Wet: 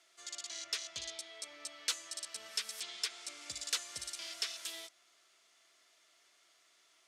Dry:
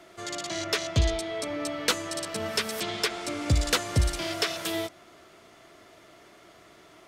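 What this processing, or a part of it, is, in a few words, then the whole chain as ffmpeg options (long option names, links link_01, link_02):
piezo pickup straight into a mixer: -af "lowpass=7600,aderivative,volume=-3dB"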